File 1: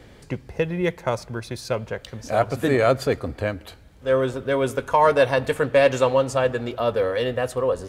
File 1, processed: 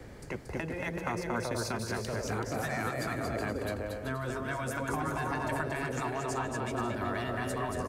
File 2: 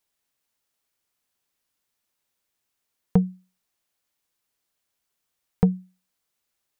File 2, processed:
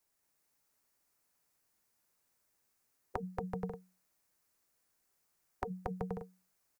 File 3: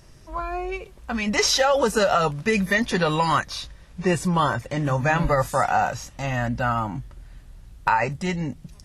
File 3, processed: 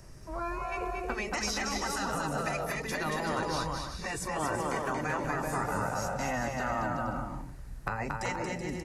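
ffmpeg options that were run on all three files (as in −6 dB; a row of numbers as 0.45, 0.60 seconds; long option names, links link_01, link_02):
-filter_complex "[0:a]acrossover=split=480[link_01][link_02];[link_02]acompressor=threshold=-30dB:ratio=6[link_03];[link_01][link_03]amix=inputs=2:normalize=0,equalizer=frequency=3300:width_type=o:width=0.75:gain=-9,acrossover=split=300|1200[link_04][link_05][link_06];[link_04]acompressor=threshold=-36dB:ratio=5[link_07];[link_07][link_05][link_06]amix=inputs=3:normalize=0,aecho=1:1:230|379.5|476.7|539.8|580.9:0.631|0.398|0.251|0.158|0.1,afftfilt=real='re*lt(hypot(re,im),0.2)':imag='im*lt(hypot(re,im),0.2)':win_size=1024:overlap=0.75"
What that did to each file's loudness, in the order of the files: −12.0, −17.5, −10.0 LU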